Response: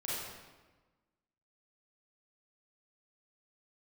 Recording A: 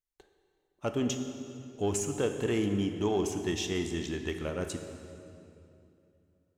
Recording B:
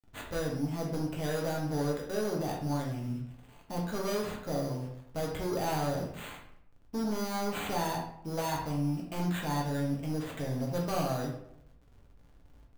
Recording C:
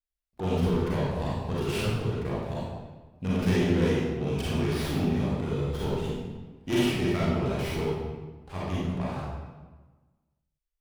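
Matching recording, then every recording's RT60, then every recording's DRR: C; 2.8, 0.70, 1.3 s; 6.0, -2.5, -8.5 dB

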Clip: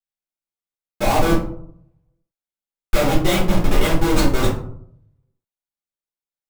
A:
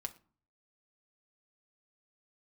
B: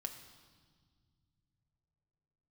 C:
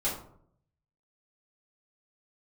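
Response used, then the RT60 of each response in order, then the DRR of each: C; 0.45 s, not exponential, 0.65 s; 5.0, 4.5, -8.5 dB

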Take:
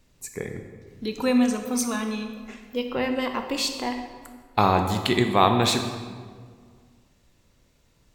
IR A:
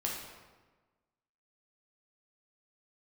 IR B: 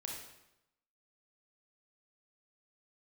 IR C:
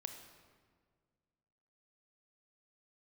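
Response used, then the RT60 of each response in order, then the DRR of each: C; 1.3, 0.90, 1.8 s; -3.0, -1.0, 5.5 dB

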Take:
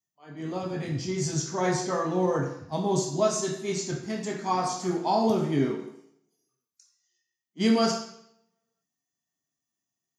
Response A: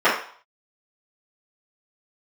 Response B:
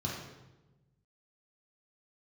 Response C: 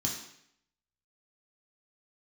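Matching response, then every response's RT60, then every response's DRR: C; 0.50, 1.1, 0.70 s; -14.0, -4.5, -3.0 dB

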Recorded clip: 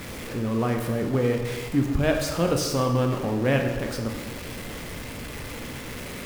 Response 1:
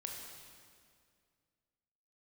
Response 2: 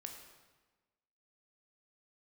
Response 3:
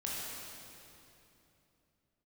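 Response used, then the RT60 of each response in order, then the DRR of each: 2; 2.2, 1.3, 3.0 s; 0.0, 3.0, -6.0 dB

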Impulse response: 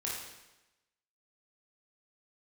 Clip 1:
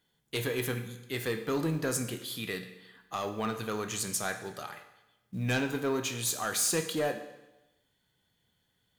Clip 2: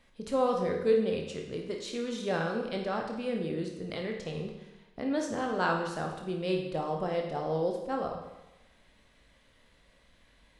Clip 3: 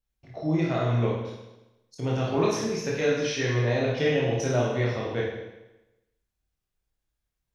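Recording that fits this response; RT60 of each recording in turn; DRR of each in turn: 3; 1.0, 1.0, 1.0 s; 7.0, 1.0, -5.0 dB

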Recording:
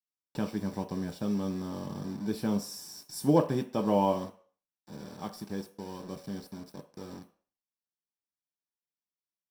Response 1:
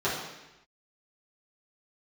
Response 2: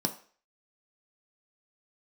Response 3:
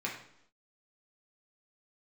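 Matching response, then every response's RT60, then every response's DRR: 2; 0.95, 0.45, 0.75 s; -10.0, 4.5, -3.5 dB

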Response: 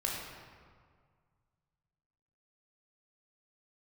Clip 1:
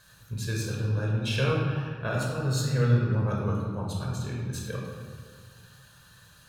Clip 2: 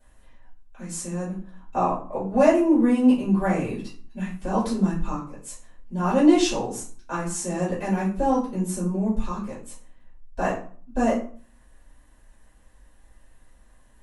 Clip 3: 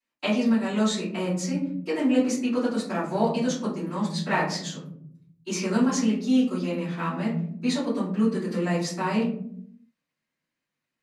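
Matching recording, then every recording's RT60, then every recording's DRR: 1; 1.9, 0.45, 0.65 s; -2.5, -12.0, -13.5 dB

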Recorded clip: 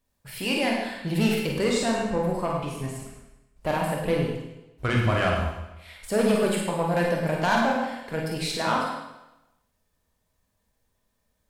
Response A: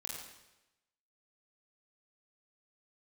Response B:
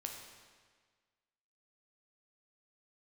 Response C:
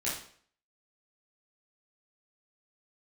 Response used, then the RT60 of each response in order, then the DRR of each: A; 0.95, 1.6, 0.55 s; -2.0, 1.5, -8.0 dB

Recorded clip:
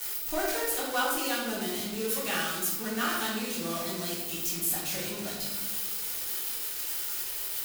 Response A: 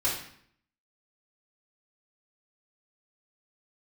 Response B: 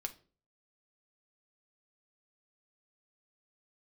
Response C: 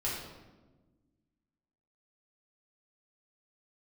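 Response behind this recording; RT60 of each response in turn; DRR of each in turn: C; 0.60, 0.40, 1.3 s; -8.0, 5.5, -6.5 dB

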